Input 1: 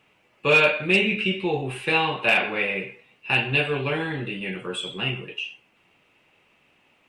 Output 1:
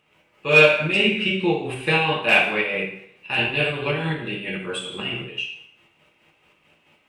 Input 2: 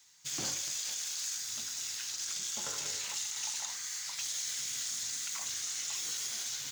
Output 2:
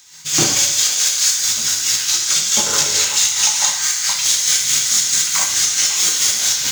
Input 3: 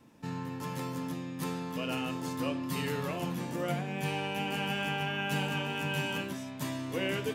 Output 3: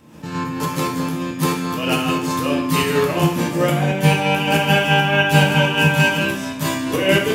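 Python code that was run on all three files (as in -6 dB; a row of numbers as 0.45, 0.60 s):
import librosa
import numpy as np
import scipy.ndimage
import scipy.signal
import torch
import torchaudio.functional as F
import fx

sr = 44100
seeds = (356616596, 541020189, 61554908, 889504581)

y = fx.volume_shaper(x, sr, bpm=138, per_beat=2, depth_db=-8, release_ms=124.0, shape='slow start')
y = fx.rev_double_slope(y, sr, seeds[0], early_s=0.59, late_s=1.5, knee_db=-25, drr_db=0.5)
y = y * 10.0 ** (-1.5 / 20.0) / np.max(np.abs(y))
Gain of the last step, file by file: +1.5, +20.5, +16.0 dB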